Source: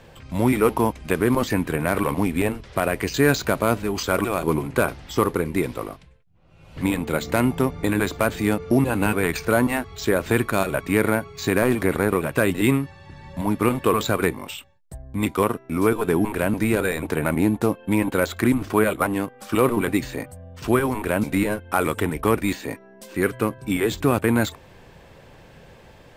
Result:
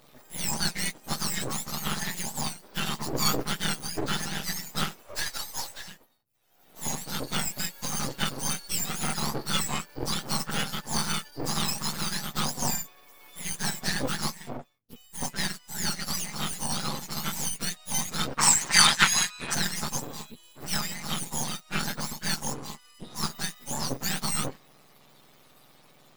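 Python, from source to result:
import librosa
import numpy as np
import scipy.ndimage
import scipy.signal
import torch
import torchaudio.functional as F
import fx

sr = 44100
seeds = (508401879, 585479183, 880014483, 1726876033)

y = fx.octave_mirror(x, sr, pivot_hz=1400.0)
y = fx.steep_highpass(y, sr, hz=480.0, slope=36, at=(5.03, 5.88))
y = np.maximum(y, 0.0)
y = fx.graphic_eq(y, sr, hz=(1000, 2000, 4000, 8000), db=(9, 11, 8, 11), at=(18.37, 19.53), fade=0.02)
y = y * 10.0 ** (-1.0 / 20.0)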